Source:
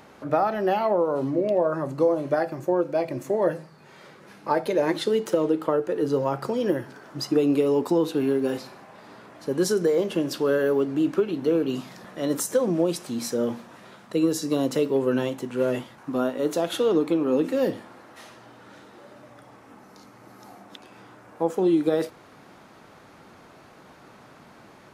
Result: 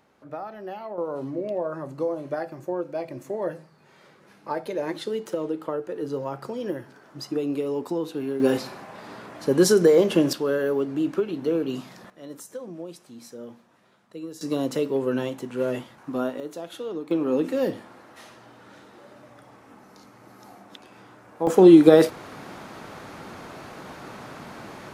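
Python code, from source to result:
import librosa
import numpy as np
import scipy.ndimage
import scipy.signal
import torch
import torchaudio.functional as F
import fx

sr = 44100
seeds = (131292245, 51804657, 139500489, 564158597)

y = fx.gain(x, sr, db=fx.steps((0.0, -13.0), (0.98, -6.0), (8.4, 5.5), (10.33, -2.0), (12.1, -14.5), (14.41, -2.0), (16.4, -11.0), (17.11, -1.0), (21.47, 9.5)))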